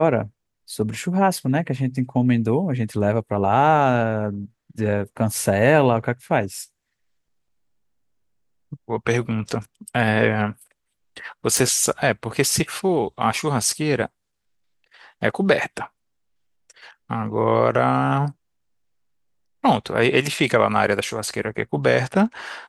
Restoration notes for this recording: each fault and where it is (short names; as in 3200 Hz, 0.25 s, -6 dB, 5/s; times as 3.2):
11.57 pop